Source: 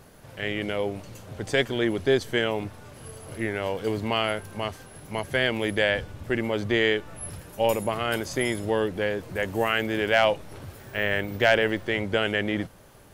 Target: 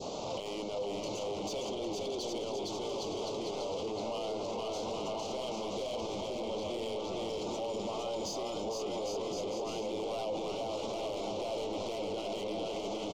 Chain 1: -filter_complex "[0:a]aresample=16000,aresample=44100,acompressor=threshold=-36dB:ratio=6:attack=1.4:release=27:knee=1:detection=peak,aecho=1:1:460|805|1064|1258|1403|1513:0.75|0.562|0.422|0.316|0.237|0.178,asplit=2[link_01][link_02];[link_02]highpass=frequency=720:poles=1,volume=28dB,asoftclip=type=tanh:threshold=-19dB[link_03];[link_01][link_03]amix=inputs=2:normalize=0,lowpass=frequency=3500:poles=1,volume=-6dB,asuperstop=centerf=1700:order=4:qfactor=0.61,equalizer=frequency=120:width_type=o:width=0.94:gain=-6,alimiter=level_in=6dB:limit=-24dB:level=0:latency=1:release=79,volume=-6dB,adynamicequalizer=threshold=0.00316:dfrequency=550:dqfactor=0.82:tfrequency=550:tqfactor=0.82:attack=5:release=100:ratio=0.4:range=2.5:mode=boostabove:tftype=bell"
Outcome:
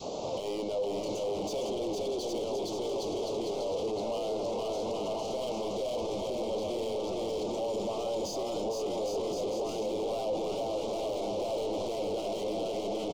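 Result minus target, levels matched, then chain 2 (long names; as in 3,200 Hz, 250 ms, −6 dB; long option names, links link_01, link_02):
downward compressor: peak gain reduction −8 dB; 2,000 Hz band −5.5 dB
-filter_complex "[0:a]aresample=16000,aresample=44100,acompressor=threshold=-45.5dB:ratio=6:attack=1.4:release=27:knee=1:detection=peak,aecho=1:1:460|805|1064|1258|1403|1513:0.75|0.562|0.422|0.316|0.237|0.178,asplit=2[link_01][link_02];[link_02]highpass=frequency=720:poles=1,volume=28dB,asoftclip=type=tanh:threshold=-19dB[link_03];[link_01][link_03]amix=inputs=2:normalize=0,lowpass=frequency=3500:poles=1,volume=-6dB,asuperstop=centerf=1700:order=4:qfactor=0.61,equalizer=frequency=120:width_type=o:width=0.94:gain=-6,alimiter=level_in=6dB:limit=-24dB:level=0:latency=1:release=79,volume=-6dB,adynamicequalizer=threshold=0.00316:dfrequency=1500:dqfactor=0.82:tfrequency=1500:tqfactor=0.82:attack=5:release=100:ratio=0.4:range=2.5:mode=boostabove:tftype=bell"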